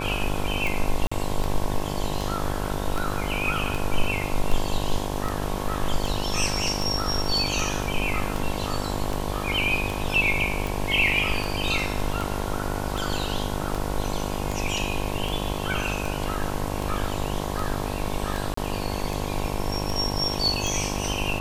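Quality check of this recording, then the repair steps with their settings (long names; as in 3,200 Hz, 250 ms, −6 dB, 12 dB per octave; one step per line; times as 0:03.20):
mains buzz 50 Hz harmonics 22 −30 dBFS
scratch tick 78 rpm
0:01.07–0:01.11: drop-out 45 ms
0:18.54–0:18.57: drop-out 34 ms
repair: click removal
hum removal 50 Hz, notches 22
repair the gap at 0:01.07, 45 ms
repair the gap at 0:18.54, 34 ms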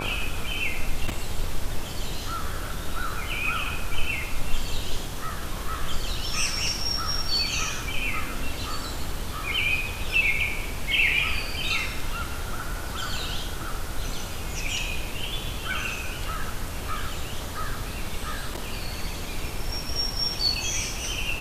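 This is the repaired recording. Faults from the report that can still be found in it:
none of them is left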